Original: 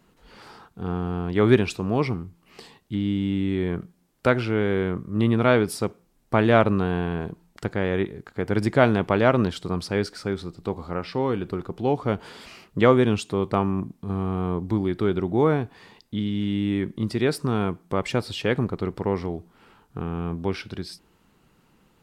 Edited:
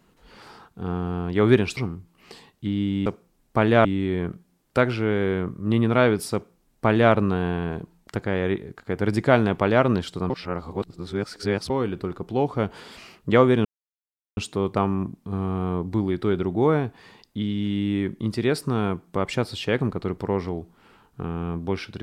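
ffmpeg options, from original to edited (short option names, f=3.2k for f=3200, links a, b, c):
-filter_complex "[0:a]asplit=7[a][b][c][d][e][f][g];[a]atrim=end=1.772[h];[b]atrim=start=2.048:end=3.342[i];[c]atrim=start=5.828:end=6.622[j];[d]atrim=start=3.338:end=9.792[k];[e]atrim=start=9.788:end=11.192,asetpts=PTS-STARTPTS,areverse[l];[f]atrim=start=11.188:end=13.14,asetpts=PTS-STARTPTS,afade=t=out:st=1.948:d=0.004:c=hsin,apad=pad_dur=0.72[m];[g]atrim=start=13.14,asetpts=PTS-STARTPTS,afade=t=in:d=0.004:c=hsin[n];[h][i]acrossfade=d=0.004:c1=hsin:c2=hsin[o];[o][j]acrossfade=d=0.004:c1=hsin:c2=hsin[p];[p][k]acrossfade=d=0.004:c1=hsin:c2=hsin[q];[q][l]acrossfade=d=0.004:c1=hsin:c2=hsin[r];[m][n]concat=n=2:v=0:a=1[s];[r][s]acrossfade=d=0.004:c1=hsin:c2=hsin"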